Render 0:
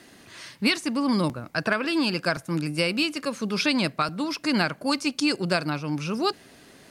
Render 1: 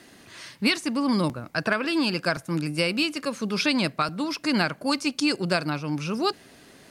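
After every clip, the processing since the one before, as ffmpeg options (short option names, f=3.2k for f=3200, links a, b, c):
-af anull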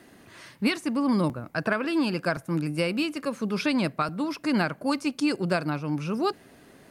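-af "equalizer=f=5k:w=0.51:g=-8.5"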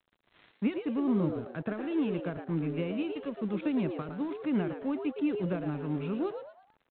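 -filter_complex "[0:a]acrossover=split=460[a][b];[b]acompressor=threshold=-43dB:ratio=3[c];[a][c]amix=inputs=2:normalize=0,aresample=8000,aeval=exprs='sgn(val(0))*max(abs(val(0))-0.00473,0)':c=same,aresample=44100,asplit=5[d][e][f][g][h];[e]adelay=113,afreqshift=120,volume=-8dB[i];[f]adelay=226,afreqshift=240,volume=-17.6dB[j];[g]adelay=339,afreqshift=360,volume=-27.3dB[k];[h]adelay=452,afreqshift=480,volume=-36.9dB[l];[d][i][j][k][l]amix=inputs=5:normalize=0,volume=-3dB"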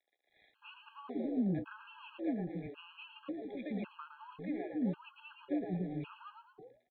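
-filter_complex "[0:a]asplit=2[a][b];[b]adelay=16,volume=-11.5dB[c];[a][c]amix=inputs=2:normalize=0,acrossover=split=380[d][e];[d]adelay=290[f];[f][e]amix=inputs=2:normalize=0,afftfilt=real='re*gt(sin(2*PI*0.91*pts/sr)*(1-2*mod(floor(b*sr/1024/820),2)),0)':imag='im*gt(sin(2*PI*0.91*pts/sr)*(1-2*mod(floor(b*sr/1024/820),2)),0)':win_size=1024:overlap=0.75,volume=-4dB"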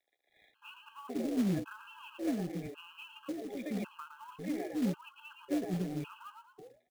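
-af "acrusher=bits=4:mode=log:mix=0:aa=0.000001,volume=2dB"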